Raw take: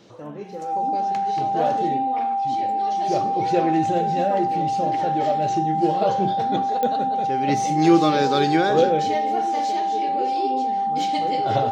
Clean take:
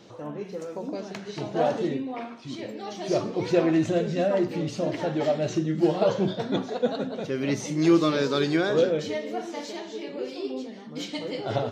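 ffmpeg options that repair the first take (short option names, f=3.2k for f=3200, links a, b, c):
-af "adeclick=t=4,bandreject=f=790:w=30,asetnsamples=n=441:p=0,asendcmd='7.48 volume volume -3.5dB',volume=0dB"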